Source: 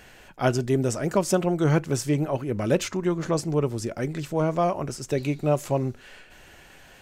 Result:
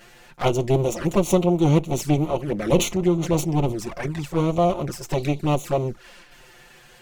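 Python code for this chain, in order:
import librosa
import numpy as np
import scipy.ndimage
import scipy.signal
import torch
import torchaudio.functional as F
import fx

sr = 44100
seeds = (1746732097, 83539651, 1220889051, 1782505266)

y = fx.lower_of_two(x, sr, delay_ms=5.7)
y = fx.env_flanger(y, sr, rest_ms=10.0, full_db=-24.0)
y = fx.sustainer(y, sr, db_per_s=120.0, at=(2.56, 3.75))
y = F.gain(torch.from_numpy(y), 5.5).numpy()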